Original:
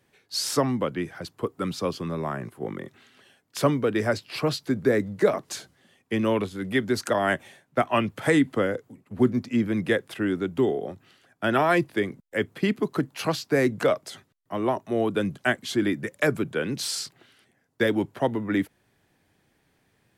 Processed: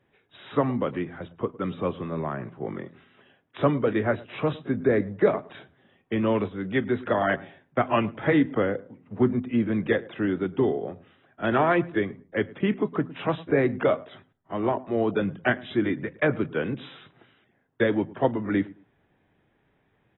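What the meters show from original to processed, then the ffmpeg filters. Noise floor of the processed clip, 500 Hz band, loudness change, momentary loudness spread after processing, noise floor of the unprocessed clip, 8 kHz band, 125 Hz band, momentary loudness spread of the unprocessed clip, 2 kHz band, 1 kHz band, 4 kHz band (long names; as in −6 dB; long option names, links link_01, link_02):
−68 dBFS, 0.0 dB, −0.5 dB, 10 LU, −69 dBFS, below −40 dB, +0.5 dB, 10 LU, −1.5 dB, 0.0 dB, −8.5 dB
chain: -filter_complex "[0:a]highshelf=frequency=3400:gain=-11.5,aexciter=amount=7.1:drive=7.7:freq=6100,bandreject=frequency=84.99:width_type=h:width=4,bandreject=frequency=169.98:width_type=h:width=4,bandreject=frequency=254.97:width_type=h:width=4,asplit=2[link_01][link_02];[link_02]adelay=108,lowpass=frequency=1400:poles=1,volume=-20dB,asplit=2[link_03][link_04];[link_04]adelay=108,lowpass=frequency=1400:poles=1,volume=0.23[link_05];[link_03][link_05]amix=inputs=2:normalize=0[link_06];[link_01][link_06]amix=inputs=2:normalize=0" -ar 22050 -c:a aac -b:a 16k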